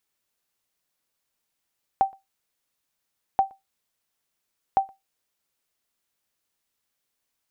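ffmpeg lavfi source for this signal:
ffmpeg -f lavfi -i "aevalsrc='0.282*(sin(2*PI*778*mod(t,1.38))*exp(-6.91*mod(t,1.38)/0.18)+0.0376*sin(2*PI*778*max(mod(t,1.38)-0.12,0))*exp(-6.91*max(mod(t,1.38)-0.12,0)/0.18))':duration=4.14:sample_rate=44100" out.wav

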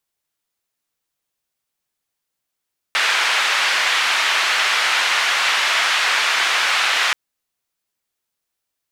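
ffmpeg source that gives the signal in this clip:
ffmpeg -f lavfi -i "anoisesrc=color=white:duration=4.18:sample_rate=44100:seed=1,highpass=frequency=1200,lowpass=frequency=2600,volume=-1.8dB" out.wav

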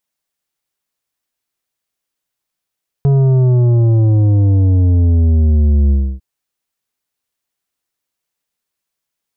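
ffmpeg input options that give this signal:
ffmpeg -f lavfi -i "aevalsrc='0.355*clip((3.15-t)/0.29,0,1)*tanh(2.82*sin(2*PI*140*3.15/log(65/140)*(exp(log(65/140)*t/3.15)-1)))/tanh(2.82)':duration=3.15:sample_rate=44100" out.wav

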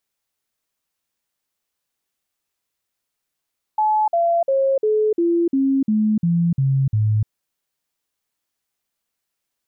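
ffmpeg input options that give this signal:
ffmpeg -f lavfi -i "aevalsrc='0.188*clip(min(mod(t,0.35),0.3-mod(t,0.35))/0.005,0,1)*sin(2*PI*858*pow(2,-floor(t/0.35)/3)*mod(t,0.35))':duration=3.5:sample_rate=44100" out.wav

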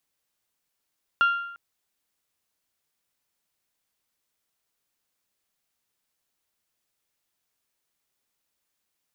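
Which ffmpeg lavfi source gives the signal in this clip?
ffmpeg -f lavfi -i "aevalsrc='0.178*pow(10,-3*t/0.79)*sin(2*PI*1390*t)+0.0501*pow(10,-3*t/0.642)*sin(2*PI*2780*t)+0.0141*pow(10,-3*t/0.608)*sin(2*PI*3336*t)+0.00398*pow(10,-3*t/0.568)*sin(2*PI*4170*t)+0.00112*pow(10,-3*t/0.521)*sin(2*PI*5560*t)':duration=0.35:sample_rate=44100" out.wav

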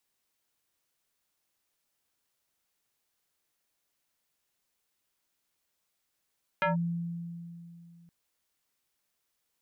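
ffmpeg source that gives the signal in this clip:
ffmpeg -f lavfi -i "aevalsrc='0.0708*pow(10,-3*t/2.82)*sin(2*PI*170*t+2.9*clip(1-t/0.14,0,1)*sin(2*PI*4.44*170*t))':duration=1.47:sample_rate=44100" out.wav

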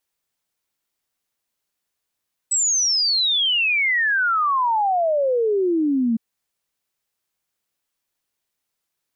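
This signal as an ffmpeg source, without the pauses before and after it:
ffmpeg -f lavfi -i "aevalsrc='0.15*clip(min(t,3.66-t)/0.01,0,1)*sin(2*PI*8000*3.66/log(220/8000)*(exp(log(220/8000)*t/3.66)-1))':duration=3.66:sample_rate=44100" out.wav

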